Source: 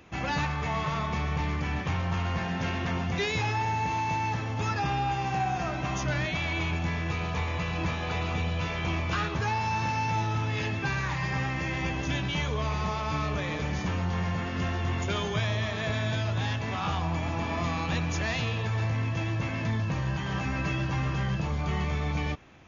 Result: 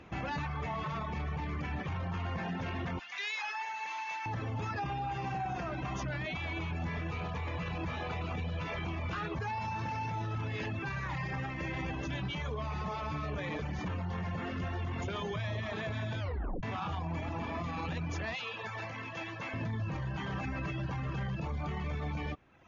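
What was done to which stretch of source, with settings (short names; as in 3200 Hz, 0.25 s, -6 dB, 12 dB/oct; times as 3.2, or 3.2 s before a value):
2.99–4.26 HPF 1400 Hz
16.2 tape stop 0.43 s
18.35–19.54 HPF 880 Hz 6 dB/oct
whole clip: LPF 2400 Hz 6 dB/oct; reverb removal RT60 0.8 s; limiter -31 dBFS; gain +2 dB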